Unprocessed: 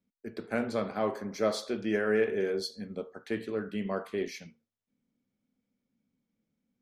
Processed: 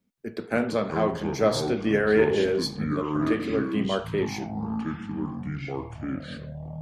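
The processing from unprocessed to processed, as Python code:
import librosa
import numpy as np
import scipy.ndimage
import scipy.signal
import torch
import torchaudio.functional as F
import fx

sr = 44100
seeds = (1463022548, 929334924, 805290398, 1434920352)

y = fx.cheby1_lowpass(x, sr, hz=7200.0, order=2, at=(0.77, 1.18))
y = fx.echo_pitch(y, sr, ms=176, semitones=-6, count=3, db_per_echo=-6.0)
y = F.gain(torch.from_numpy(y), 6.0).numpy()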